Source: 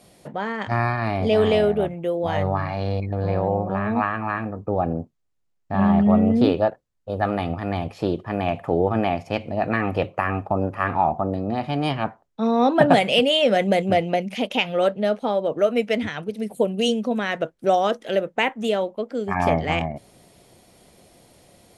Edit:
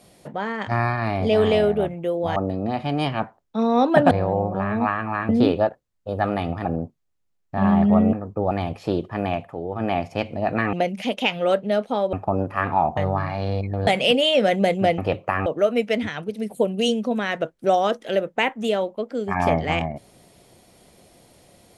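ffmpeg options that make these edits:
-filter_complex "[0:a]asplit=15[a][b][c][d][e][f][g][h][i][j][k][l][m][n][o];[a]atrim=end=2.362[p];[b]atrim=start=11.198:end=12.952[q];[c]atrim=start=3.258:end=4.442[r];[d]atrim=start=6.298:end=7.662[s];[e]atrim=start=4.818:end=6.302[t];[f]atrim=start=4.438:end=4.822[u];[g]atrim=start=7.658:end=8.69,asetpts=PTS-STARTPTS,afade=t=out:st=0.762:d=0.27:silence=0.316228[v];[h]atrim=start=8.69:end=8.84,asetpts=PTS-STARTPTS,volume=-10dB[w];[i]atrim=start=8.84:end=9.882,asetpts=PTS-STARTPTS,afade=t=in:d=0.27:silence=0.316228[x];[j]atrim=start=14.058:end=15.462[y];[k]atrim=start=10.358:end=11.202[z];[l]atrim=start=2.358:end=3.262[aa];[m]atrim=start=12.948:end=14.062[ab];[n]atrim=start=9.878:end=10.362[ac];[o]atrim=start=15.458[ad];[p][q]acrossfade=d=0.004:c1=hsin:c2=hsin[ae];[ae][r]acrossfade=d=0.004:c1=hsin:c2=hsin[af];[af][s]acrossfade=d=0.004:c1=hsin:c2=hsin[ag];[ag][t]acrossfade=d=0.004:c1=hsin:c2=hsin[ah];[ah][u]acrossfade=d=0.004:c1=hsin:c2=hsin[ai];[v][w][x]concat=n=3:v=0:a=1[aj];[ai][aj]acrossfade=d=0.004:c1=hsin:c2=hsin[ak];[ak][y]acrossfade=d=0.004:c1=hsin:c2=hsin[al];[al][z]acrossfade=d=0.004:c1=hsin:c2=hsin[am];[am][aa]acrossfade=d=0.004:c1=hsin:c2=hsin[an];[an][ab]acrossfade=d=0.004:c1=hsin:c2=hsin[ao];[ao][ac]acrossfade=d=0.004:c1=hsin:c2=hsin[ap];[ap][ad]acrossfade=d=0.004:c1=hsin:c2=hsin"

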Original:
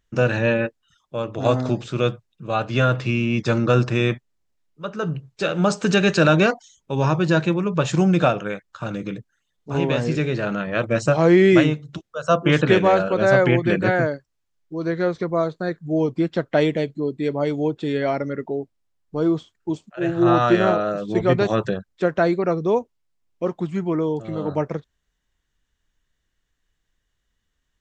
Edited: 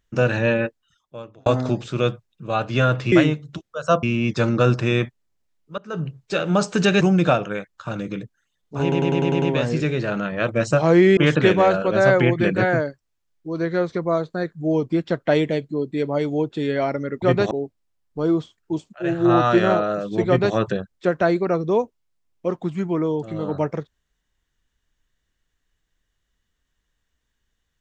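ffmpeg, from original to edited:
-filter_complex "[0:a]asplit=15[a][b][c][d][e][f][g][h][i][j][k][l][m][n][o];[a]atrim=end=1.46,asetpts=PTS-STARTPTS,afade=t=out:st=0.66:d=0.8[p];[b]atrim=start=1.46:end=3.122,asetpts=PTS-STARTPTS,afade=t=in:d=0.004:c=hsin[q];[c]atrim=start=11.518:end=12.432[r];[d]atrim=start=3.118:end=4.87,asetpts=PTS-STARTPTS,afade=t=out:st=1.748:d=0.004:c=hsin:silence=0.105925[s];[e]atrim=start=4.87:end=6.102,asetpts=PTS-STARTPTS,afade=t=in:d=0.26:silence=0.105925[t];[f]atrim=start=7.958:end=9.872[u];[g]atrim=start=9.768:end=9.872[v];[h]atrim=start=9.768:end=9.872[w];[i]atrim=start=9.768:end=9.872[x];[j]atrim=start=9.768:end=9.872[y];[k]atrim=start=9.768:end=9.872[z];[l]atrim=start=9.768:end=11.522[aa];[m]atrim=start=12.428:end=18.482[ab];[n]atrim=start=21.228:end=21.522[ac];[o]atrim=start=18.478[ad];[p][q]concat=n=2:v=0:a=1[ae];[ae][r]acrossfade=d=0.004:c1=hsin:c2=hsin[af];[s][t]concat=n=2:v=0:a=1[ag];[af][ag]acrossfade=d=0.004:c1=hsin:c2=hsin[ah];[ah][u]acrossfade=d=0.004:c1=hsin:c2=hsin[ai];[ai][v]acrossfade=d=0.004:c1=hsin:c2=hsin[aj];[aj][w]acrossfade=d=0.004:c1=hsin:c2=hsin[ak];[ak][x]acrossfade=d=0.004:c1=hsin:c2=hsin[al];[al][y]acrossfade=d=0.004:c1=hsin:c2=hsin[am];[am][z]acrossfade=d=0.004:c1=hsin:c2=hsin[an];[an][aa]acrossfade=d=0.004:c1=hsin:c2=hsin[ao];[ao][ab]acrossfade=d=0.004:c1=hsin:c2=hsin[ap];[ap][ac]acrossfade=d=0.004:c1=hsin:c2=hsin[aq];[aq][ad]acrossfade=d=0.004:c1=hsin:c2=hsin"

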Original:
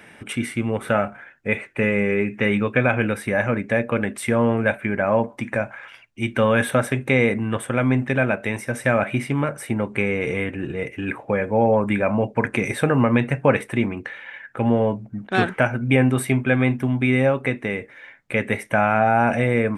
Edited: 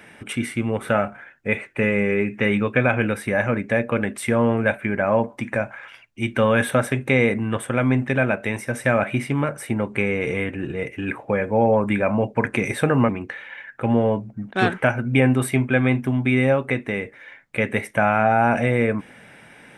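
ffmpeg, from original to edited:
-filter_complex "[0:a]asplit=2[a][b];[a]atrim=end=13.092[c];[b]atrim=start=13.848[d];[c][d]acrossfade=d=0.004:c1=hsin:c2=hsin"

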